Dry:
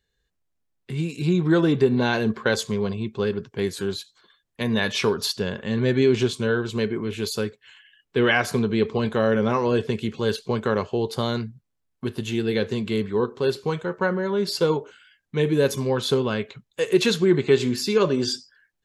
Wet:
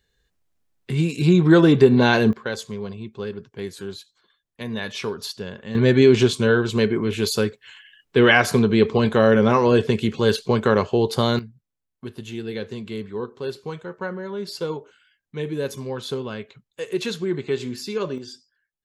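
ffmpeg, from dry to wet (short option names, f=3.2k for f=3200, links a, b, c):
-af "asetnsamples=n=441:p=0,asendcmd='2.33 volume volume -6dB;5.75 volume volume 5dB;11.39 volume volume -6.5dB;18.18 volume volume -13.5dB',volume=5.5dB"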